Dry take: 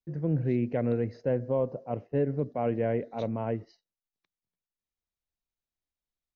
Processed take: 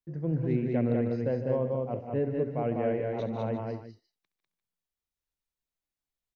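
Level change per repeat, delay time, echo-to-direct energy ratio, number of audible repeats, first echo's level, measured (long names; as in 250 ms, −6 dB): repeats not evenly spaced, 68 ms, −1.5 dB, 5, −14.5 dB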